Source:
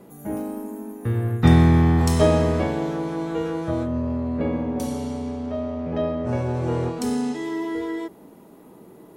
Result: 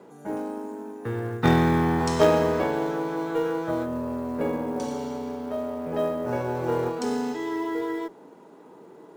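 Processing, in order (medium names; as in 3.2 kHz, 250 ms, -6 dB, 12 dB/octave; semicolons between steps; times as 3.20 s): cabinet simulation 170–7800 Hz, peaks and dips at 210 Hz -5 dB, 450 Hz +5 dB, 920 Hz +6 dB, 1.5 kHz +6 dB; Chebyshev shaper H 3 -39 dB, 4 -16 dB, 6 -16 dB, 8 -30 dB, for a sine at -3.5 dBFS; short-mantissa float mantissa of 4-bit; trim -2 dB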